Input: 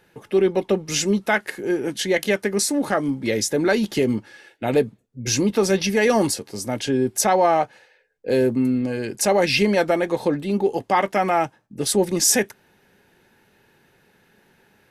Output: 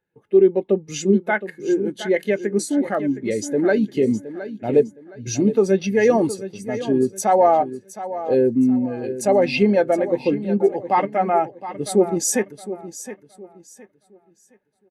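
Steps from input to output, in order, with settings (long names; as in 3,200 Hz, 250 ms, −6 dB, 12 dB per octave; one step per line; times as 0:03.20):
notch filter 5,300 Hz, Q 9.3
on a send: repeating echo 716 ms, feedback 43%, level −9 dB
on the sum: every bin expanded away from the loudest bin 1.5 to 1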